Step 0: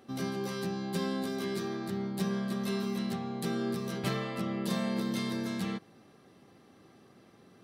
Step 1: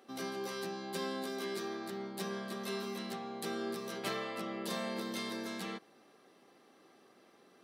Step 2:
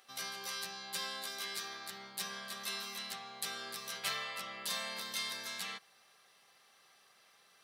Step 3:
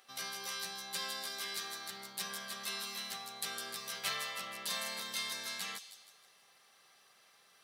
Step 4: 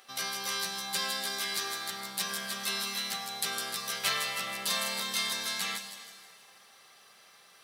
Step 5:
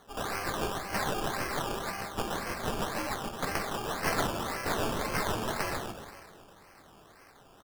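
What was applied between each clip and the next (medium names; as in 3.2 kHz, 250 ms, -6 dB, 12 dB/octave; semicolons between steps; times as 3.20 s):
high-pass 340 Hz 12 dB/octave; trim -1.5 dB
amplifier tone stack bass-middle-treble 10-0-10; trim +7 dB
feedback echo behind a high-pass 158 ms, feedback 44%, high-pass 4.8 kHz, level -4 dB
plate-style reverb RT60 2.4 s, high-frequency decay 0.85×, pre-delay 85 ms, DRR 10 dB; trim +7 dB
tracing distortion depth 0.18 ms; delay 129 ms -3.5 dB; decimation with a swept rate 17×, swing 60% 1.9 Hz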